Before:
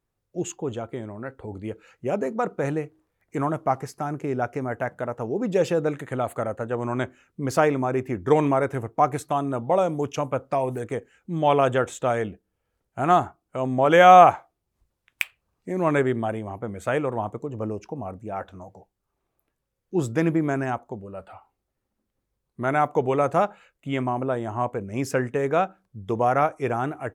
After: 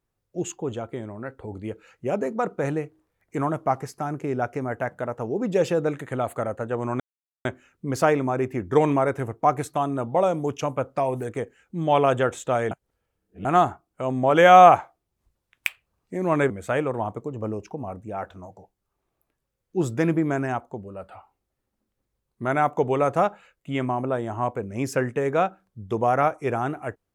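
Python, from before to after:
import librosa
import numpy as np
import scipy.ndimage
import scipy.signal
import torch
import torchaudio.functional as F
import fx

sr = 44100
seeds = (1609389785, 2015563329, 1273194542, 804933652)

y = fx.edit(x, sr, fx.insert_silence(at_s=7.0, length_s=0.45),
    fx.reverse_span(start_s=12.26, length_s=0.74),
    fx.cut(start_s=16.05, length_s=0.63), tone=tone)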